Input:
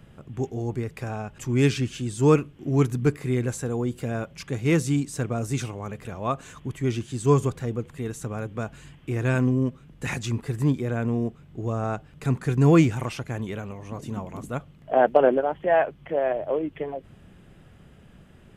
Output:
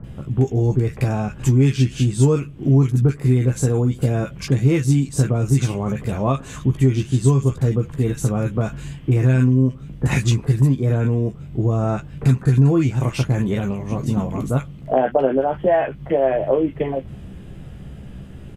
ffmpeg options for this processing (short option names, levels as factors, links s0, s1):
-filter_complex "[0:a]lowshelf=f=250:g=8.5,acompressor=threshold=0.0794:ratio=5,asplit=2[s0][s1];[s1]adelay=15,volume=0.447[s2];[s0][s2]amix=inputs=2:normalize=0,acrossover=split=1400[s3][s4];[s4]adelay=40[s5];[s3][s5]amix=inputs=2:normalize=0,volume=2.37"